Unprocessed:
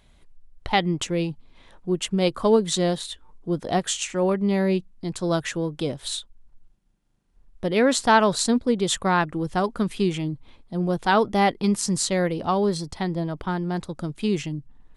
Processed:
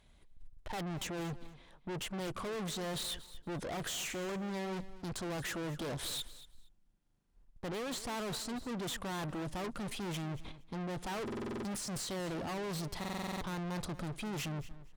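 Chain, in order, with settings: de-esser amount 70%; gate -43 dBFS, range -15 dB; reverse; compression 6:1, threshold -29 dBFS, peak gain reduction 15 dB; reverse; valve stage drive 47 dB, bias 0.4; on a send: feedback delay 233 ms, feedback 17%, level -16.5 dB; on the sum: buffer glitch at 11.23/12.99 s, samples 2048, times 8; trim +9.5 dB

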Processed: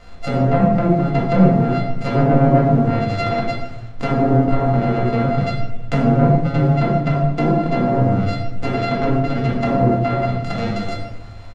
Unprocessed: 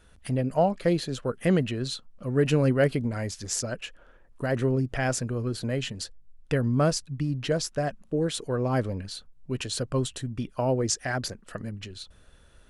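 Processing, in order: sorted samples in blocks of 64 samples; low-pass that closes with the level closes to 780 Hz, closed at -23 dBFS; treble shelf 8.5 kHz +9.5 dB; in parallel at -1 dB: compression 5:1, threshold -34 dBFS, peak gain reduction 14 dB; on the sum: saturation -16 dBFS, distortion -19 dB; tempo 1.1×; bit crusher 9-bit; distance through air 120 m; simulated room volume 400 m³, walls mixed, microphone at 2 m; trim +4.5 dB

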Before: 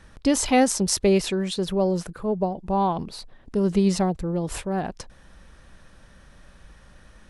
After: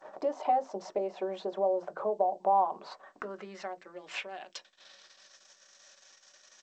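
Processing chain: in parallel at +2 dB: upward compressor, threshold -28 dBFS; on the sum: gate -34 dBFS, range -32 dB; peaking EQ 580 Hz +9 dB 1.2 oct; compression 8:1, threshold -21 dBFS, peak gain reduction 18.5 dB; tempo 1.1×; band-pass sweep 790 Hz -> 6.1 kHz, 2.43–5.45 s; high-pass 200 Hz 12 dB/octave; peaking EQ 260 Hz -2.5 dB 2.1 oct; on a send at -6.5 dB: reverberation RT60 0.15 s, pre-delay 3 ms; on the sum: G.722 64 kbps 16 kHz

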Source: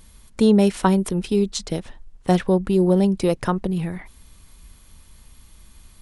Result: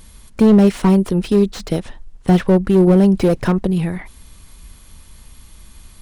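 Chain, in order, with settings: 2.87–3.59 s: transient shaper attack 0 dB, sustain +5 dB; slew-rate limiter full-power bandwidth 67 Hz; trim +6 dB

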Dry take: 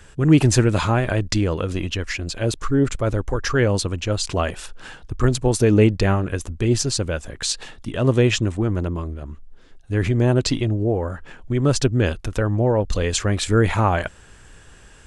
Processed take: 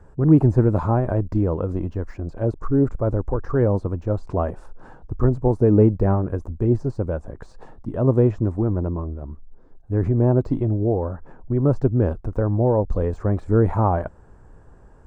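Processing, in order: de-esser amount 75%; FFT filter 950 Hz 0 dB, 3.1 kHz -29 dB, 4.7 kHz -23 dB

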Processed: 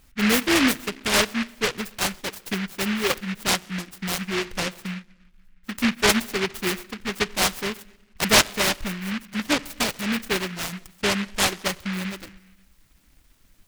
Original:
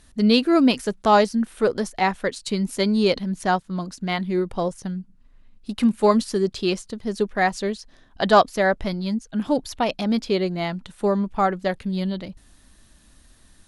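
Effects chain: reverb removal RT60 1.1 s; 0.73–3.10 s: rotary cabinet horn 6 Hz; simulated room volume 3400 m³, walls furnished, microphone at 0.45 m; delay time shaken by noise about 1.9 kHz, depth 0.36 ms; trim -2 dB

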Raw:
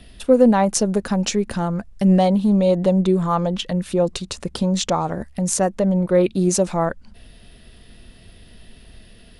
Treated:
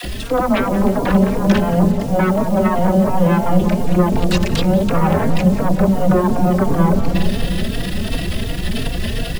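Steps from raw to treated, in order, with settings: rattle on loud lows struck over -26 dBFS, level -5 dBFS; hum notches 50/100/150/200/250 Hz; low-pass that closes with the level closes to 350 Hz, closed at -15 dBFS; treble shelf 7.5 kHz -9.5 dB; reverse; compression 5:1, threshold -28 dBFS, peak gain reduction 15 dB; reverse; transient shaper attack -10 dB, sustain +10 dB; sine folder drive 18 dB, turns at -13 dBFS; phase dispersion lows, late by 42 ms, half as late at 430 Hz; word length cut 6-bit, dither none; on a send: filtered feedback delay 179 ms, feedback 82%, low-pass 880 Hz, level -5.5 dB; on the sum: endless flanger 3.7 ms +2.8 Hz; trim +2.5 dB

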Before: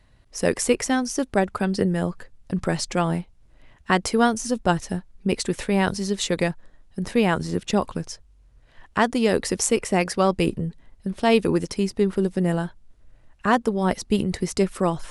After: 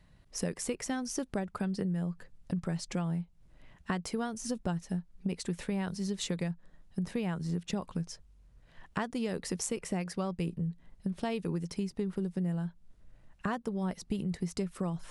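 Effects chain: peaking EQ 170 Hz +11 dB 0.38 oct; compression 6:1, threshold -26 dBFS, peak gain reduction 15 dB; trim -5 dB

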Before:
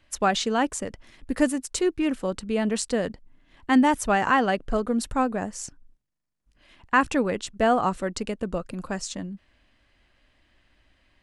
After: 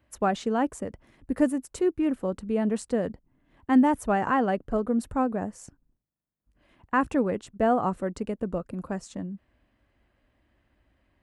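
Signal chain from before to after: high-pass 44 Hz; peaking EQ 4.7 kHz -14.5 dB 2.8 oct

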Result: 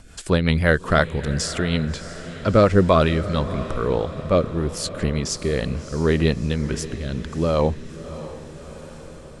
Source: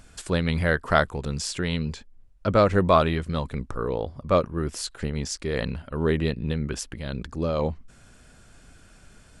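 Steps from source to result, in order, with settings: rotary cabinet horn 5.5 Hz, later 0.8 Hz, at 2.83 s; echo that smears into a reverb 651 ms, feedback 59%, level -14 dB; trim +6.5 dB

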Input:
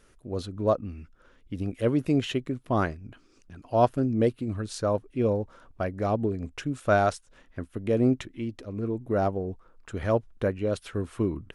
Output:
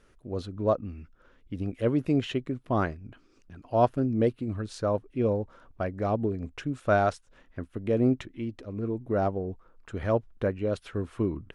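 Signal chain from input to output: low-pass 3.9 kHz 6 dB/octave; trim -1 dB

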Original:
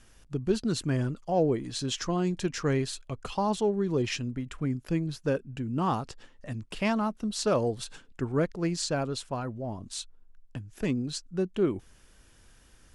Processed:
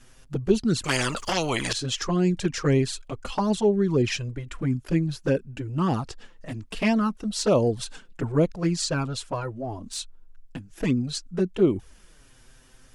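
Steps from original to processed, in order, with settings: touch-sensitive flanger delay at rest 8.5 ms, full sweep at -21.5 dBFS; 0.84–1.73 s: spectrum-flattening compressor 4:1; trim +7 dB

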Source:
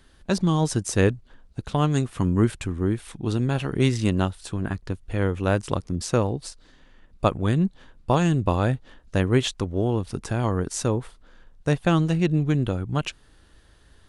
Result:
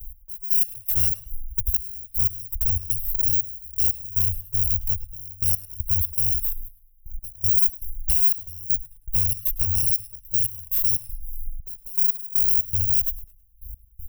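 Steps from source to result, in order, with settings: bit-reversed sample order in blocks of 128 samples; compression 2:1, threshold -26 dBFS, peak gain reduction 7.5 dB; inverse Chebyshev band-stop 200–6500 Hz, stop band 50 dB; hard clipper -26 dBFS, distortion -13 dB; trance gate "x...x..xx.xxx" 119 bpm -24 dB; tone controls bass +8 dB, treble +10 dB; saturation -19 dBFS, distortion -16 dB; peak limiter -25 dBFS, peak gain reduction 5.5 dB; comb 1.8 ms, depth 70%; modulated delay 106 ms, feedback 32%, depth 74 cents, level -17 dB; trim +8.5 dB

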